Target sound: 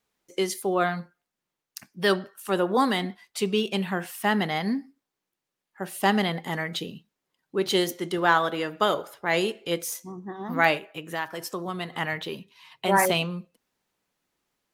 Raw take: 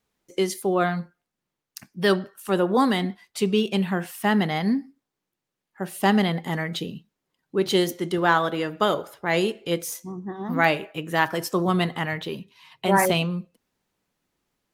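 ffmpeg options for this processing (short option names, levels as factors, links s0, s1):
-filter_complex "[0:a]asplit=3[s0][s1][s2];[s0]afade=t=out:st=10.78:d=0.02[s3];[s1]acompressor=threshold=0.0251:ratio=2,afade=t=in:st=10.78:d=0.02,afade=t=out:st=11.92:d=0.02[s4];[s2]afade=t=in:st=11.92:d=0.02[s5];[s3][s4][s5]amix=inputs=3:normalize=0,lowshelf=f=310:g=-7"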